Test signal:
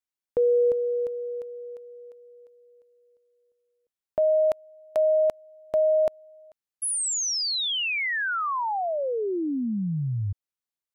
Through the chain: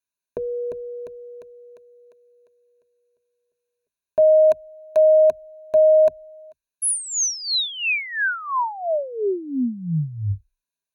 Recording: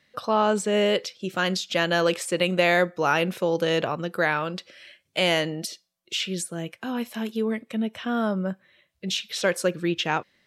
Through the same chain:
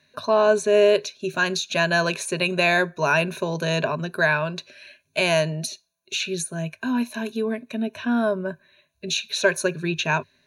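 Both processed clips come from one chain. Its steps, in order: rippled EQ curve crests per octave 1.5, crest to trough 15 dB

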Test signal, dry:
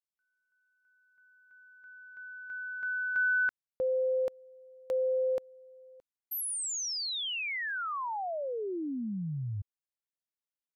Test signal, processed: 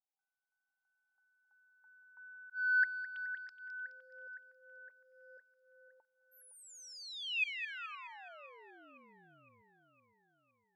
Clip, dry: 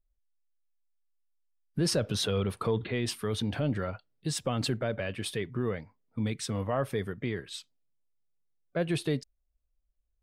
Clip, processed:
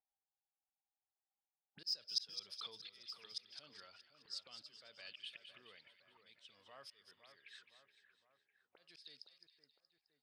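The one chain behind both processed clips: auto-wah 790–5000 Hz, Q 20, up, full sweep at -28 dBFS; in parallel at -4 dB: saturation -35.5 dBFS; on the sum: slow attack 387 ms; two-band feedback delay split 1.9 kHz, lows 512 ms, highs 211 ms, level -9 dB; trim +10.5 dB

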